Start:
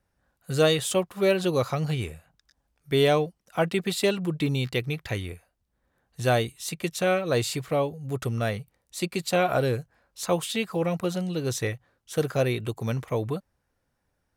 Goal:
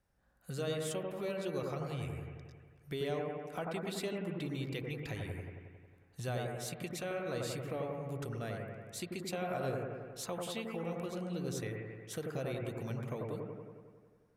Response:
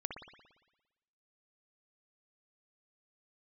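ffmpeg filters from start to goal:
-filter_complex "[0:a]acompressor=threshold=-38dB:ratio=2.5[link_01];[1:a]atrim=start_sample=2205,asetrate=28224,aresample=44100[link_02];[link_01][link_02]afir=irnorm=-1:irlink=0,volume=-4.5dB"

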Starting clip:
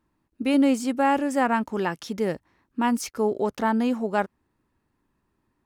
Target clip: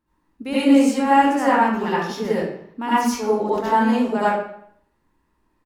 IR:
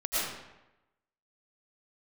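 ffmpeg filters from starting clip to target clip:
-filter_complex "[0:a]asettb=1/sr,asplit=3[link_01][link_02][link_03];[link_01]atrim=end=1.184[link_04];[link_02]atrim=start=1.18:end=3.64,asetpts=PTS-STARTPTS,afade=type=in:duration=0.004:curve=qsin,afade=type=out:start_time=2.456:duration=0.004:curve=qsin,equalizer=frequency=8500:width=3.3:gain=-6.5[link_05];[link_03]atrim=start=3.636[link_06];[link_04][link_05]acrossfade=duration=0.004:curve1=hsin:curve2=qsin[link_07];[link_07][link_06]acrossfade=duration=0.004:curve1=qsin:curve2=hsin,asplit=2[link_08][link_09];[link_09]adelay=169.1,volume=-29dB,highshelf=frequency=4000:gain=-3.8[link_10];[link_08][link_10]amix=inputs=2:normalize=0[link_11];[1:a]atrim=start_sample=2205,asetrate=66150,aresample=44100[link_12];[link_11][link_12]afir=irnorm=-1:irlink=0"

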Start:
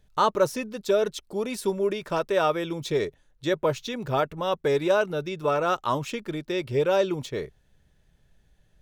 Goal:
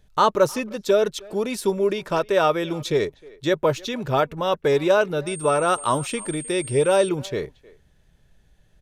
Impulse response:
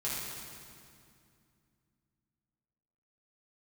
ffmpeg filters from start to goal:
-filter_complex "[0:a]asettb=1/sr,asplit=3[link_01][link_02][link_03];[link_01]atrim=end=5.274[link_04];[link_02]atrim=start=5.27:end=7.09,asetpts=PTS-STARTPTS,afade=type=in:duration=0.004:curve=qsin,afade=type=out:start_time=1.816:duration=0.004:curve=qsin,aeval=exprs='val(0)+0.0126*sin(2*PI*8600*n/s)':channel_layout=same[link_05];[link_03]atrim=start=7.086[link_06];[link_04][link_05]acrossfade=duration=0.004:curve1=hsin:curve2=qsin[link_07];[link_07][link_06]acrossfade=duration=0.004:curve1=qsin:curve2=hsin,aresample=32000,aresample=44100,asplit=2[link_08][link_09];[link_09]adelay=310,highpass=300,lowpass=3400,asoftclip=type=hard:threshold=-19dB,volume=-22dB[link_10];[link_08][link_10]amix=inputs=2:normalize=0,volume=4dB"

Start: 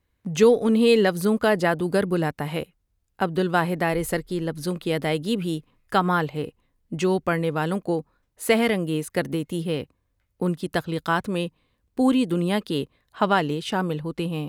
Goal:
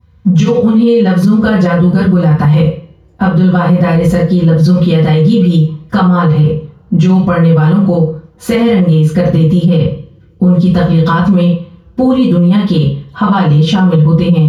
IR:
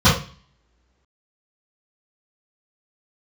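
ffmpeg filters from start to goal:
-filter_complex "[0:a]acompressor=threshold=-23dB:ratio=6[link_01];[1:a]atrim=start_sample=2205[link_02];[link_01][link_02]afir=irnorm=-1:irlink=0,alimiter=level_in=-5.5dB:limit=-1dB:release=50:level=0:latency=1,volume=-1dB"

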